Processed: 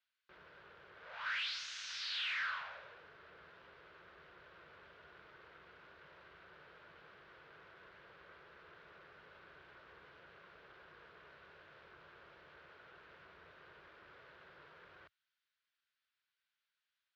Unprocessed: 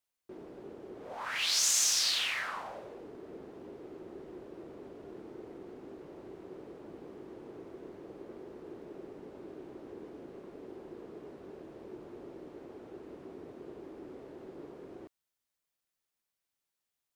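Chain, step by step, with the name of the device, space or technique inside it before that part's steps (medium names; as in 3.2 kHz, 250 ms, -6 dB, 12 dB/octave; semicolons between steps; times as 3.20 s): scooped metal amplifier (valve stage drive 42 dB, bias 0.35; cabinet simulation 100–3900 Hz, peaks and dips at 110 Hz -8 dB, 230 Hz -8 dB, 390 Hz -4 dB, 780 Hz -8 dB, 1.5 kHz +9 dB; amplifier tone stack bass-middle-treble 10-0-10); trim +8.5 dB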